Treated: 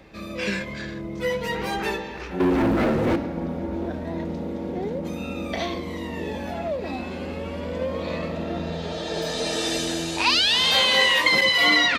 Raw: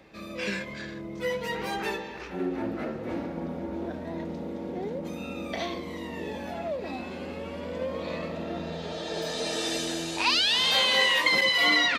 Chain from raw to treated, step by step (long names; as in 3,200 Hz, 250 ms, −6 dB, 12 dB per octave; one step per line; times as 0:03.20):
low-shelf EQ 88 Hz +10.5 dB
0:02.40–0:03.16: leveller curve on the samples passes 3
level +4 dB